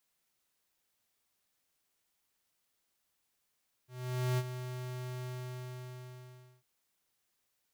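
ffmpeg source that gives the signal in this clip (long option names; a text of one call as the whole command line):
ffmpeg -f lavfi -i "aevalsrc='0.0316*(2*lt(mod(126*t,1),0.5)-1)':duration=2.75:sample_rate=44100,afade=type=in:duration=0.499,afade=type=out:start_time=0.499:duration=0.047:silence=0.299,afade=type=out:start_time=1.38:duration=1.37" out.wav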